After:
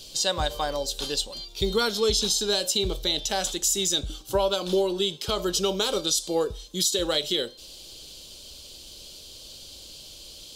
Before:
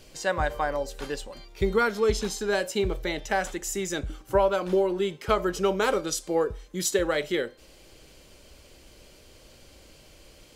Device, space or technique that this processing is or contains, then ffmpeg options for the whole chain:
over-bright horn tweeter: -af "highshelf=f=2700:t=q:w=3:g=10,alimiter=limit=0.224:level=0:latency=1:release=85"

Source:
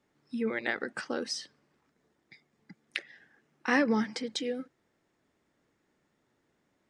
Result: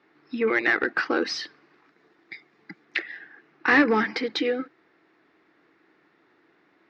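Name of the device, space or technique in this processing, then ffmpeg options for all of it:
overdrive pedal into a guitar cabinet: -filter_complex "[0:a]asettb=1/sr,asplit=3[s0][s1][s2];[s0]atrim=end=1.244[s3];[s1]atrim=start=1.24:end=2.84,asetpts=PTS-STARTPTS,afade=t=in:d=0.004:c=qsin,afade=t=out:st=1.596:d=0.004:c=qsin,highshelf=f=6700:g=9.5[s4];[s2]atrim=start=2.836[s5];[s3][s4]acrossfade=d=0.004:c1=hsin:c2=qsin[s6];[s6][s5]acrossfade=d=0.004:c1=qsin:c2=hsin,asplit=2[s7][s8];[s8]highpass=f=720:p=1,volume=8.91,asoftclip=type=tanh:threshold=0.251[s9];[s7][s9]amix=inputs=2:normalize=0,lowpass=f=2800:p=1,volume=0.501,highpass=89,equalizer=f=120:t=q:w=4:g=-4,equalizer=f=230:t=q:w=4:g=-6,equalizer=f=320:t=q:w=4:g=7,equalizer=f=570:t=q:w=4:g=-8,equalizer=f=910:t=q:w=4:g=-4,equalizer=f=3200:t=q:w=4:g=-6,lowpass=f=4400:w=0.5412,lowpass=f=4400:w=1.3066,volume=1.58"

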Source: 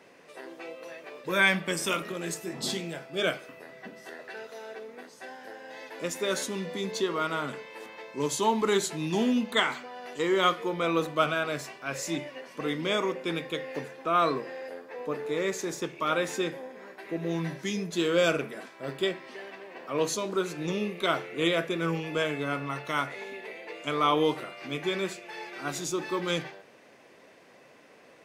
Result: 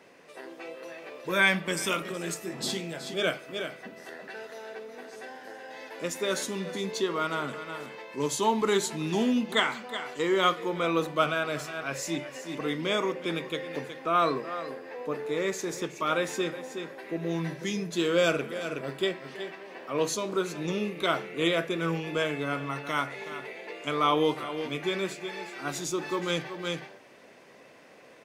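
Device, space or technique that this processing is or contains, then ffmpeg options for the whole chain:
ducked delay: -filter_complex "[0:a]asplit=3[s0][s1][s2];[s1]adelay=370,volume=0.708[s3];[s2]apad=whole_len=1262128[s4];[s3][s4]sidechaincompress=threshold=0.00447:ratio=8:attack=16:release=137[s5];[s0][s5]amix=inputs=2:normalize=0"

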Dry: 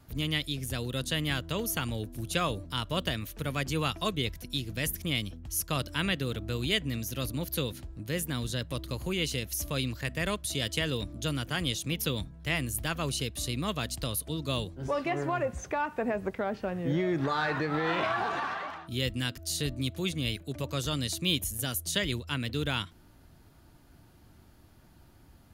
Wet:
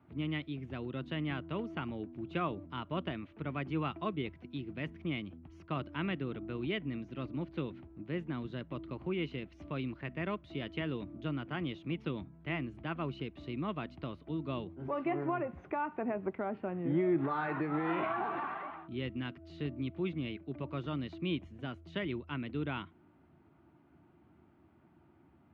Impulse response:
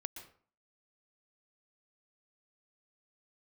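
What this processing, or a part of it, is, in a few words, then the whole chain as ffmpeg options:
bass cabinet: -af "highpass=f=89:w=0.5412,highpass=f=89:w=1.3066,equalizer=f=110:t=q:w=4:g=-10,equalizer=f=340:t=q:w=4:g=6,equalizer=f=500:t=q:w=4:g=-7,equalizer=f=1700:t=q:w=4:g=-7,lowpass=f=2300:w=0.5412,lowpass=f=2300:w=1.3066,volume=0.668"

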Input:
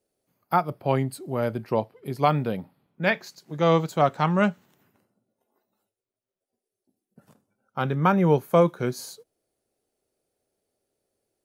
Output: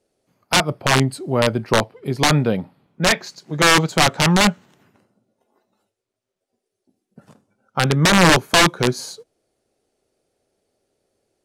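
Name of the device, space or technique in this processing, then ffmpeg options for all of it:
overflowing digital effects unit: -af "aeval=exprs='(mod(5.62*val(0)+1,2)-1)/5.62':c=same,lowpass=8400,volume=2.66"

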